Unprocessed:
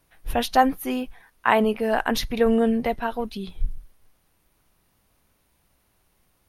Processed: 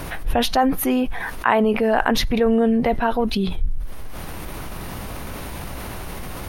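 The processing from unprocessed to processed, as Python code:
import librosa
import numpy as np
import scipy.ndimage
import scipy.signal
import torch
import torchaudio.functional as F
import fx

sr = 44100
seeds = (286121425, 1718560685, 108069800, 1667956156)

y = fx.high_shelf(x, sr, hz=3100.0, db=-8.5)
y = fx.env_flatten(y, sr, amount_pct=70)
y = y * librosa.db_to_amplitude(-1.5)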